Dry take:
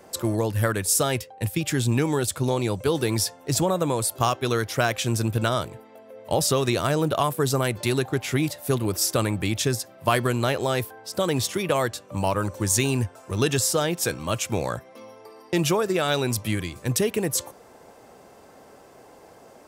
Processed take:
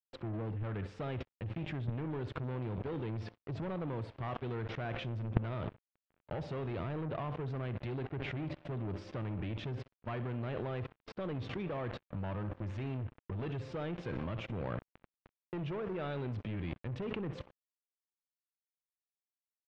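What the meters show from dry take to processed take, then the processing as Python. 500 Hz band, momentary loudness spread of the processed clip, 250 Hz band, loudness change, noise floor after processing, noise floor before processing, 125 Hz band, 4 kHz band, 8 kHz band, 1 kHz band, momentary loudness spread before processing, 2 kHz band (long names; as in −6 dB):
−16.0 dB, 4 LU, −13.5 dB, −15.5 dB, below −85 dBFS, −50 dBFS, −11.0 dB, −23.0 dB, below −40 dB, −17.5 dB, 6 LU, −17.0 dB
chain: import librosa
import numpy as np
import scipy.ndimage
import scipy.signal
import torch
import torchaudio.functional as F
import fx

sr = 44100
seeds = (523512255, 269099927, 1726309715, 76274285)

p1 = x + fx.echo_feedback(x, sr, ms=63, feedback_pct=49, wet_db=-16.5, dry=0)
p2 = np.sign(p1) * np.maximum(np.abs(p1) - 10.0 ** (-36.0 / 20.0), 0.0)
p3 = fx.low_shelf(p2, sr, hz=430.0, db=10.0)
p4 = 10.0 ** (-19.5 / 20.0) * np.tanh(p3 / 10.0 ** (-19.5 / 20.0))
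p5 = fx.level_steps(p4, sr, step_db=21)
p6 = scipy.signal.sosfilt(scipy.signal.butter(4, 3000.0, 'lowpass', fs=sr, output='sos'), p5)
y = F.gain(torch.from_numpy(p6), 4.5).numpy()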